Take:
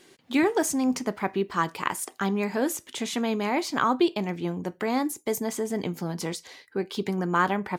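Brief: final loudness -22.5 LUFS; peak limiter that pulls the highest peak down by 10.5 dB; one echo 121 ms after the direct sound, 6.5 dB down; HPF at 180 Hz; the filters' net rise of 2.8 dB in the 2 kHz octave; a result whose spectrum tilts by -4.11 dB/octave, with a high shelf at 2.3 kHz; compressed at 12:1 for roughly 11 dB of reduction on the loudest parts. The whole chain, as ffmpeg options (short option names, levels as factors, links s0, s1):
-af "highpass=180,equalizer=f=2000:t=o:g=5,highshelf=f=2300:g=-3,acompressor=threshold=0.0398:ratio=12,alimiter=limit=0.0631:level=0:latency=1,aecho=1:1:121:0.473,volume=3.98"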